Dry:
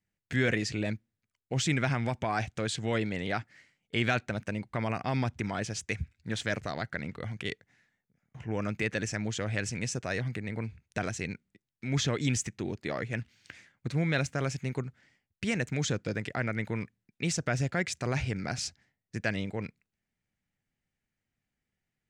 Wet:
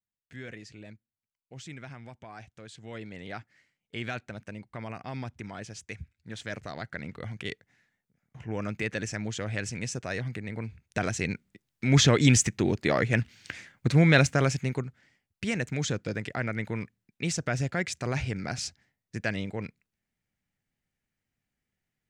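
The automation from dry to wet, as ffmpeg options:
-af "volume=9dB,afade=t=in:st=2.71:d=0.66:silence=0.398107,afade=t=in:st=6.32:d=0.92:silence=0.473151,afade=t=in:st=10.64:d=1.26:silence=0.334965,afade=t=out:st=14.2:d=0.68:silence=0.375837"

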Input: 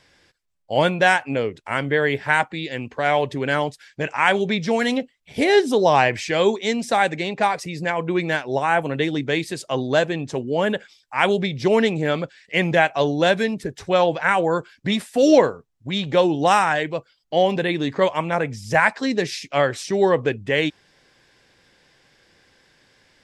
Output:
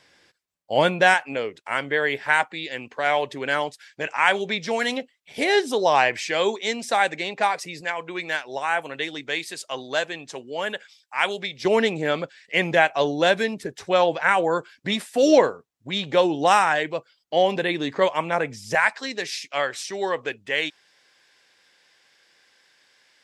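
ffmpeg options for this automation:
-af "asetnsamples=n=441:p=0,asendcmd='1.14 highpass f 610;7.81 highpass f 1300;11.65 highpass f 340;18.75 highpass f 1200',highpass=f=210:p=1"

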